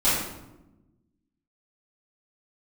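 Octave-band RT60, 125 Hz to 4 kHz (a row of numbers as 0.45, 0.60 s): 1.7, 1.6, 1.1, 0.90, 0.70, 0.60 s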